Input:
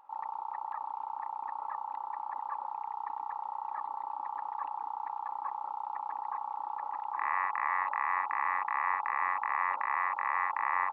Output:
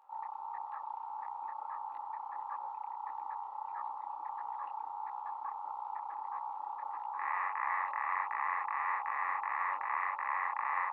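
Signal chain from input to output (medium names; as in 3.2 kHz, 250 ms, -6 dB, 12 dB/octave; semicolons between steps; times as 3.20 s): high-pass 290 Hz 24 dB/octave; detune thickener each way 54 cents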